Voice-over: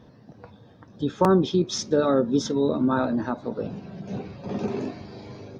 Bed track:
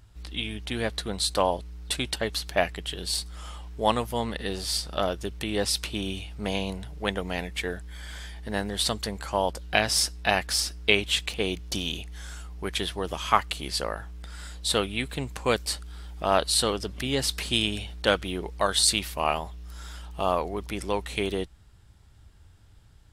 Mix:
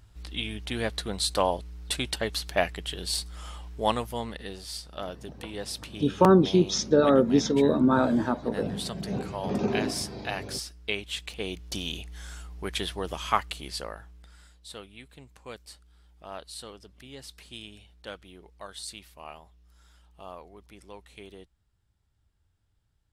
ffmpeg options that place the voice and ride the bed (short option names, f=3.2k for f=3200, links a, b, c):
-filter_complex "[0:a]adelay=5000,volume=1dB[a];[1:a]volume=6.5dB,afade=t=out:st=3.71:d=0.9:silence=0.375837,afade=t=in:st=11.09:d=0.95:silence=0.421697,afade=t=out:st=13.09:d=1.49:silence=0.158489[b];[a][b]amix=inputs=2:normalize=0"